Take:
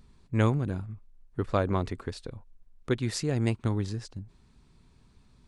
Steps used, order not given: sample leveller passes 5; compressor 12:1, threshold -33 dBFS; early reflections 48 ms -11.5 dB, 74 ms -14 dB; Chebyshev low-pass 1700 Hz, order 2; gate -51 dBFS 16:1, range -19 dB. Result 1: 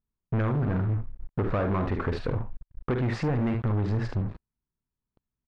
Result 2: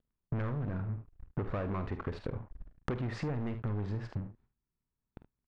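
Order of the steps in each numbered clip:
early reflections > gate > compressor > sample leveller > Chebyshev low-pass; sample leveller > Chebyshev low-pass > gate > early reflections > compressor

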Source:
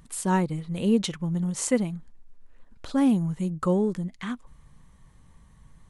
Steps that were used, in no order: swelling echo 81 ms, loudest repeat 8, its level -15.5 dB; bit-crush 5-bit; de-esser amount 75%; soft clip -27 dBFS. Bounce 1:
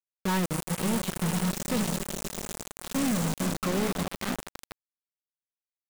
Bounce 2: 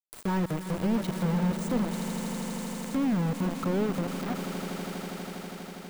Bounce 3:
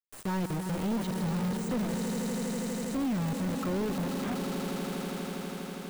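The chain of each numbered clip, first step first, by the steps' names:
soft clip > swelling echo > de-esser > bit-crush; soft clip > bit-crush > swelling echo > de-esser; bit-crush > swelling echo > soft clip > de-esser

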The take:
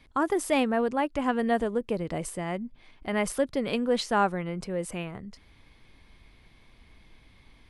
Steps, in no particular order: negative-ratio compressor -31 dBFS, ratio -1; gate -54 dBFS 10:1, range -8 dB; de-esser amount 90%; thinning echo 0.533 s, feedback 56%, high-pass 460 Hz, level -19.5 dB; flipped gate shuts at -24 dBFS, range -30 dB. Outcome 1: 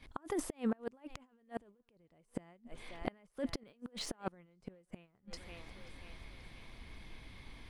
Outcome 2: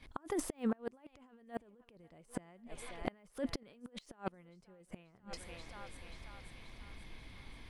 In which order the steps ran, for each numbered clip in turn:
negative-ratio compressor > de-esser > thinning echo > flipped gate > gate; thinning echo > de-esser > negative-ratio compressor > gate > flipped gate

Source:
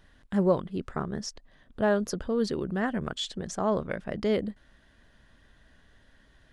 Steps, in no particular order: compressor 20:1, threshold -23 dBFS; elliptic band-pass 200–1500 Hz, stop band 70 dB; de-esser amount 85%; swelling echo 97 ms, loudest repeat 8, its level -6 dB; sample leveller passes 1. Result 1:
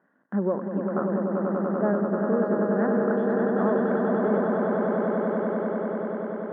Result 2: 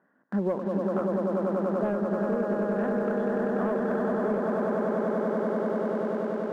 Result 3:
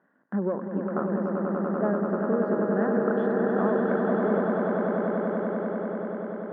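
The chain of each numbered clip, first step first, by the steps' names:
compressor > swelling echo > sample leveller > de-esser > elliptic band-pass; swelling echo > de-esser > elliptic band-pass > sample leveller > compressor; de-esser > sample leveller > elliptic band-pass > compressor > swelling echo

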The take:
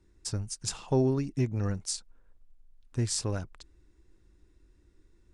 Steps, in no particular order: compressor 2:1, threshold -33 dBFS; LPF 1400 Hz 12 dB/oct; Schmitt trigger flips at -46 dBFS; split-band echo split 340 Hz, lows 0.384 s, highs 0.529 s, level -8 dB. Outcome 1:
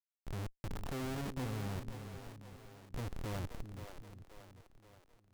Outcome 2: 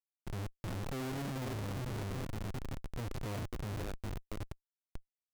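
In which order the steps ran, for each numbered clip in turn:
compressor > LPF > Schmitt trigger > split-band echo; LPF > compressor > split-band echo > Schmitt trigger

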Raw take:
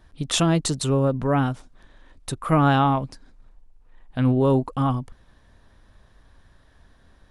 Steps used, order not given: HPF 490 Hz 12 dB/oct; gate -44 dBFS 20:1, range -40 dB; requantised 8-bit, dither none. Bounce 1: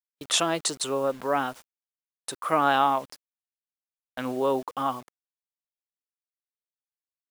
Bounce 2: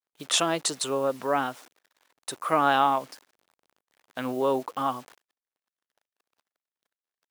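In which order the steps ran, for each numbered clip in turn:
HPF > requantised > gate; requantised > gate > HPF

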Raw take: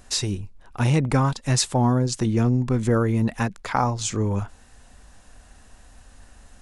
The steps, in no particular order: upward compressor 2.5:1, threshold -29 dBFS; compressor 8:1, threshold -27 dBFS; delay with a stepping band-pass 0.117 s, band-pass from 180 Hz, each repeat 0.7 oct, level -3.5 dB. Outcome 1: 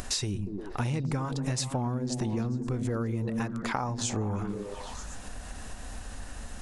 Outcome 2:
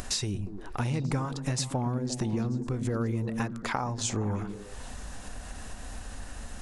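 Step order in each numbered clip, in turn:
delay with a stepping band-pass > upward compressor > compressor; upward compressor > compressor > delay with a stepping band-pass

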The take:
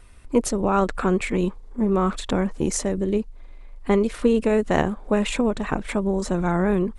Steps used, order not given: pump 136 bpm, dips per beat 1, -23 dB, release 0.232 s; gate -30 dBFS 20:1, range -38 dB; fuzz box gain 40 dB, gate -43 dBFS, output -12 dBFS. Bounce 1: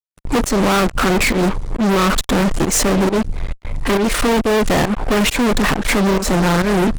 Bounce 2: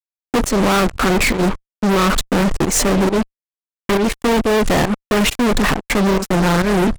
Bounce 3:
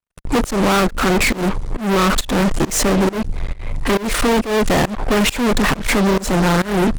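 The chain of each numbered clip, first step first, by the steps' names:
pump > fuzz box > gate; pump > gate > fuzz box; fuzz box > pump > gate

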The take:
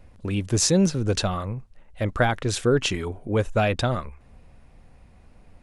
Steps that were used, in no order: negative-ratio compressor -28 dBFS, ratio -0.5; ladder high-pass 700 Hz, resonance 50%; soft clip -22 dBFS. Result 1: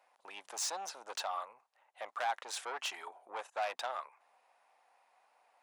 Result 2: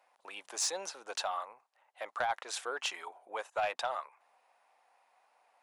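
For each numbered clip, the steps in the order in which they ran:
soft clip > ladder high-pass > negative-ratio compressor; ladder high-pass > negative-ratio compressor > soft clip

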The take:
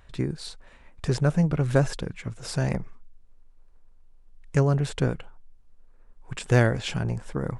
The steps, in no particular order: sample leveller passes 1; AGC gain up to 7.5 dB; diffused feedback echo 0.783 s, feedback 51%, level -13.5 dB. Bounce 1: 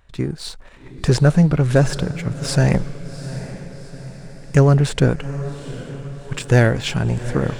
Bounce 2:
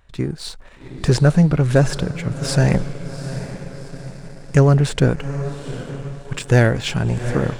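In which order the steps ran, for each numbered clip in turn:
AGC > sample leveller > diffused feedback echo; diffused feedback echo > AGC > sample leveller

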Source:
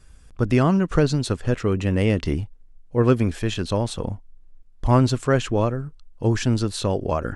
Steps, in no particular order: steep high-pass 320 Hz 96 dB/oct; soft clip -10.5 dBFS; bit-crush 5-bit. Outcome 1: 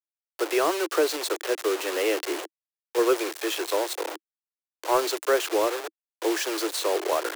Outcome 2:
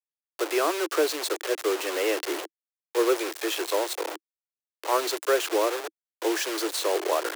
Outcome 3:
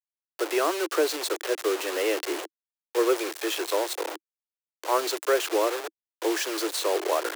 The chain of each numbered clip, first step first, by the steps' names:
bit-crush > steep high-pass > soft clip; soft clip > bit-crush > steep high-pass; bit-crush > soft clip > steep high-pass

